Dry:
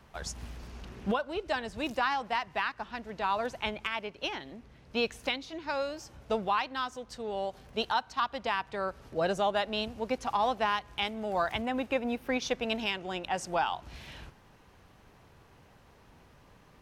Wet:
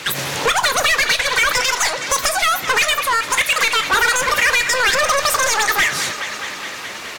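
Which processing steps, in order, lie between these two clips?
on a send: feedback echo behind a low-pass 490 ms, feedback 73%, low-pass 2.6 kHz, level -23 dB; on the sum: overdrive pedal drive 27 dB, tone 3.1 kHz, clips at -16.5 dBFS; speakerphone echo 90 ms, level -15 dB; Schroeder reverb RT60 0.34 s, combs from 33 ms, DRR 16 dB; speed mistake 33 rpm record played at 78 rpm; in parallel at -1 dB: compression, threshold -31 dBFS, peak gain reduction 10 dB; on the sum: trim +5.5 dB; AAC 64 kbps 44.1 kHz

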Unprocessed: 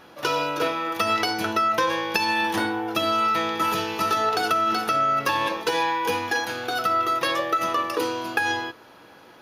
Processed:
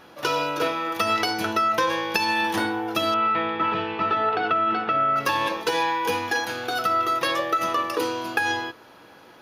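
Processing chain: 3.14–5.16 s: low-pass 3 kHz 24 dB/octave

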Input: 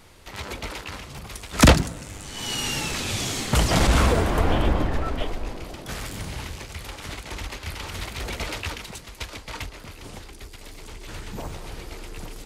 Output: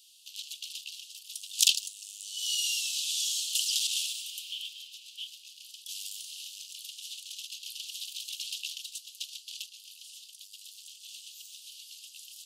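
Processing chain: steep high-pass 2.8 kHz 96 dB/octave

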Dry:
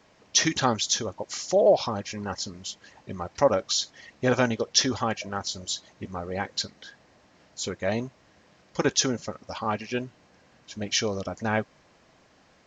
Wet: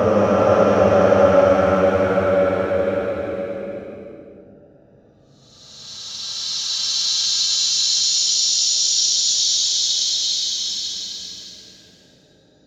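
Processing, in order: local Wiener filter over 41 samples; Paulstretch 35×, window 0.10 s, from 3.51 s; trim +9 dB

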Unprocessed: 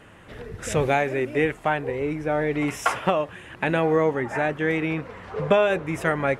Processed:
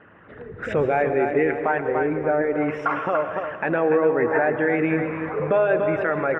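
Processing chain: resonances exaggerated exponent 1.5; high-pass 220 Hz 6 dB/octave; peaking EQ 1.4 kHz +6 dB 1 oct; level rider gain up to 6.5 dB; distance through air 370 m; feedback delay 289 ms, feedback 40%, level -9.5 dB; peak limiter -11.5 dBFS, peak gain reduction 7.5 dB; reverberation RT60 1.1 s, pre-delay 108 ms, DRR 10.5 dB

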